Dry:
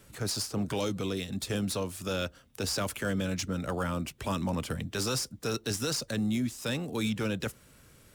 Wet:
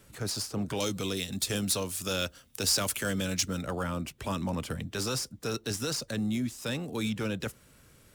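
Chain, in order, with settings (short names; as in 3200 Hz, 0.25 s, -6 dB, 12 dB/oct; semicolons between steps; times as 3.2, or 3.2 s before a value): 0.8–3.62 high shelf 2900 Hz +10 dB; gain -1 dB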